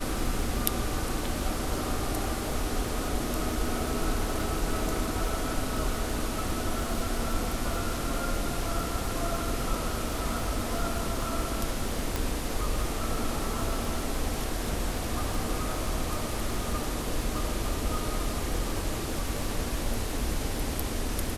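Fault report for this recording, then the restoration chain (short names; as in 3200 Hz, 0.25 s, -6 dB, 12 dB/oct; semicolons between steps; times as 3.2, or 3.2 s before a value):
crackle 36/s -33 dBFS
12.16 pop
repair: de-click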